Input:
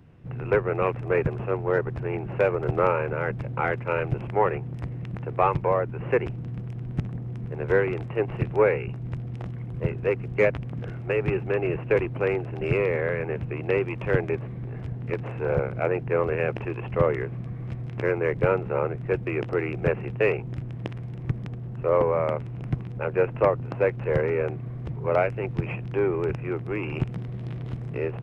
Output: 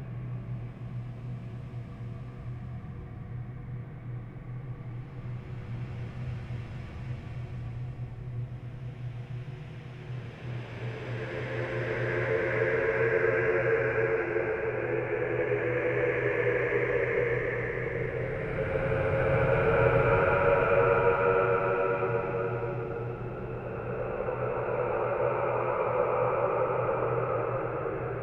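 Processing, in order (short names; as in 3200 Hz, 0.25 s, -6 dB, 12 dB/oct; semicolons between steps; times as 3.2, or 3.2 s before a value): bell 210 Hz -7 dB 2.5 oct; Paulstretch 18×, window 0.25 s, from 17.35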